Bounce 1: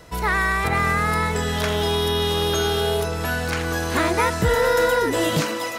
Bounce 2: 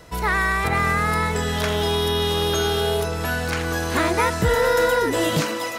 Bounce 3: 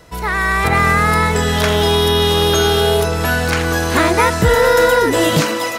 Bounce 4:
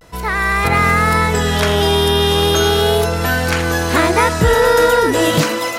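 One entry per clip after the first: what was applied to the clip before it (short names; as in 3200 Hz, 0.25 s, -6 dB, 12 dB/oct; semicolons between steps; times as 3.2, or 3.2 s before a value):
nothing audible
AGC gain up to 7.5 dB; gain +1 dB
vibrato 0.37 Hz 45 cents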